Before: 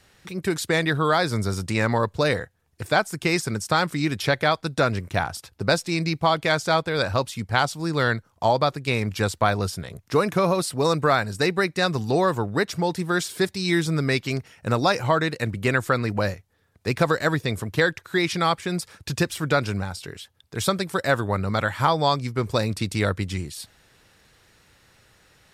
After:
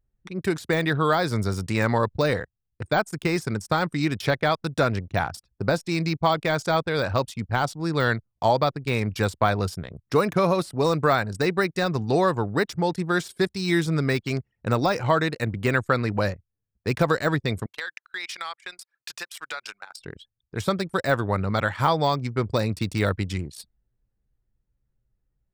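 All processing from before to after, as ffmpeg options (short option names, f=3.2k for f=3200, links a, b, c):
-filter_complex "[0:a]asettb=1/sr,asplit=3[a][b][c];[a]atrim=end=17.664[d];[b]atrim=start=17.66:end=20,asetpts=PTS-STARTPTS,afade=t=in:d=0.004:c=qsin,afade=t=out:st=2.336:d=0.004:c=qsin,highpass=1.1k,acompressor=threshold=-28dB:ratio=5:attack=3.2:release=140:knee=1:detection=peak[e];[c]atrim=start=19.996[f];[d][e]acrossfade=d=0.004:c1=hsin:c2=qsin[g];[g][f]acrossfade=d=0.004:c1=qsin:c2=hsin,anlmdn=3.98,deesser=0.7"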